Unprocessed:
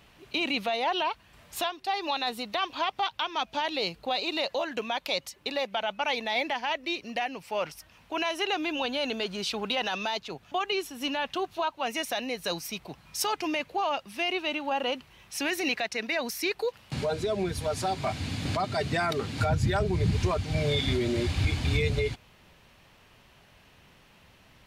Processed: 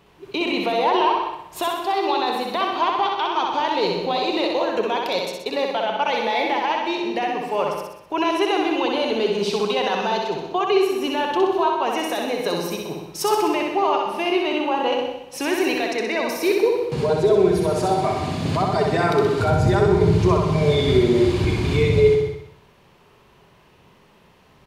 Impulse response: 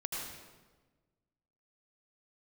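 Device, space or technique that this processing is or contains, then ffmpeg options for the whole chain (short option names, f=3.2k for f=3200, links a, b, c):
keyed gated reverb: -filter_complex "[0:a]equalizer=f=160:t=o:w=0.67:g=7,equalizer=f=400:t=o:w=0.67:g=12,equalizer=f=1k:t=o:w=0.67:g=8,asplit=3[a][b][c];[1:a]atrim=start_sample=2205[d];[b][d]afir=irnorm=-1:irlink=0[e];[c]apad=whole_len=1087938[f];[e][f]sidechaingate=range=-33dB:threshold=-43dB:ratio=16:detection=peak,volume=-5.5dB[g];[a][g]amix=inputs=2:normalize=0,aecho=1:1:63|126|189|252|315|378|441:0.668|0.361|0.195|0.105|0.0568|0.0307|0.0166,volume=-2.5dB"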